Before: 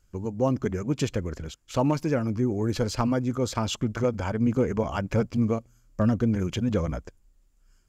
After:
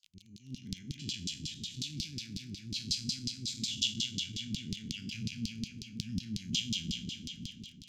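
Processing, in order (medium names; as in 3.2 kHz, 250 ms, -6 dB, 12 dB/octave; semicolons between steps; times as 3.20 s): spectral sustain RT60 2.88 s; peaking EQ 970 Hz +9 dB 0.23 oct; filtered feedback delay 444 ms, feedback 60%, low-pass 2.9 kHz, level -9 dB; level rider; treble shelf 7.5 kHz -7 dB, from 1.27 s +4 dB; crackle 32 per s -22 dBFS; LFO band-pass saw down 5.5 Hz 390–4900 Hz; inverse Chebyshev band-stop 530–1200 Hz, stop band 70 dB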